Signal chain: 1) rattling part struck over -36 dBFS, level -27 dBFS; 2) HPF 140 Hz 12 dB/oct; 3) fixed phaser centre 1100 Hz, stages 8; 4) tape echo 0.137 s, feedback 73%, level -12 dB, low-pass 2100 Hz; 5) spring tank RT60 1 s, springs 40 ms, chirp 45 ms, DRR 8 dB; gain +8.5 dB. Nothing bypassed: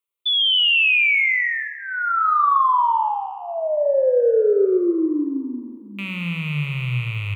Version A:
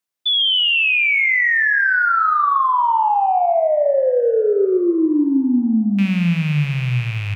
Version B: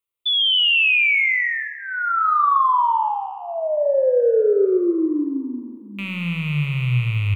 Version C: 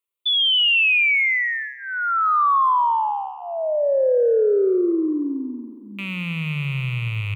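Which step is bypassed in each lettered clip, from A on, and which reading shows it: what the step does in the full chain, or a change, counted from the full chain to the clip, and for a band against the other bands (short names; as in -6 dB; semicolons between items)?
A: 3, 250 Hz band +4.0 dB; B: 2, 125 Hz band +4.0 dB; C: 5, crest factor change -3.0 dB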